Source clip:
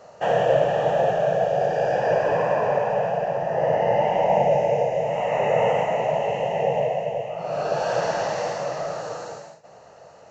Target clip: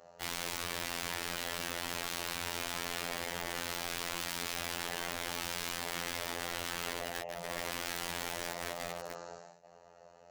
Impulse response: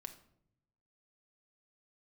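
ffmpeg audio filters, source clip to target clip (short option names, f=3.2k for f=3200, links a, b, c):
-af "aeval=exprs='(mod(13.3*val(0)+1,2)-1)/13.3':c=same,afftfilt=real='hypot(re,im)*cos(PI*b)':imag='0':win_size=2048:overlap=0.75,volume=-8dB"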